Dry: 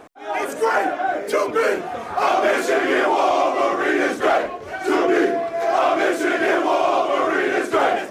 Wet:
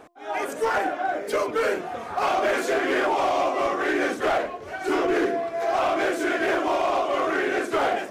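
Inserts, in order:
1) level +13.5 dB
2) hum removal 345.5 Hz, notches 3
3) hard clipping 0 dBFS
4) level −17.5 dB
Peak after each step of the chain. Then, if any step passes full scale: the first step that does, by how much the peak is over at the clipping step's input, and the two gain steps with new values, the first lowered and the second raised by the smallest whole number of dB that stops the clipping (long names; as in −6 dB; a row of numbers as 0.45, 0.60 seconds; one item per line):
+5.5, +6.0, 0.0, −17.5 dBFS
step 1, 6.0 dB
step 1 +7.5 dB, step 4 −11.5 dB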